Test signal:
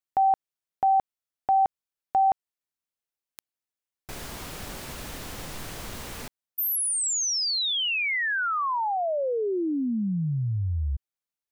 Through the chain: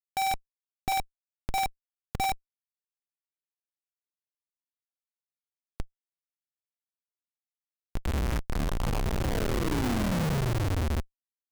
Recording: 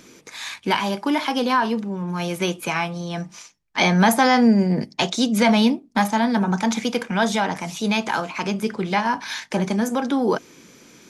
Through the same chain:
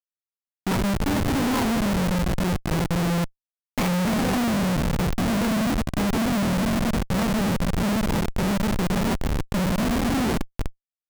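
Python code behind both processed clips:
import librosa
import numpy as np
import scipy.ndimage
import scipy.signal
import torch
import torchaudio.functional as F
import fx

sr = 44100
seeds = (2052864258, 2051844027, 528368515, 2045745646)

p1 = fx.law_mismatch(x, sr, coded='A')
p2 = fx.bass_treble(p1, sr, bass_db=11, treble_db=-8)
p3 = fx.notch(p2, sr, hz=1400.0, q=8.9)
p4 = np.clip(10.0 ** (20.0 / 20.0) * p3, -1.0, 1.0) / 10.0 ** (20.0 / 20.0)
p5 = p4 + fx.echo_split(p4, sr, split_hz=330.0, low_ms=144, high_ms=291, feedback_pct=52, wet_db=-6.5, dry=0)
p6 = fx.rev_spring(p5, sr, rt60_s=1.7, pass_ms=(49,), chirp_ms=25, drr_db=9.5)
y = fx.schmitt(p6, sr, flips_db=-20.5)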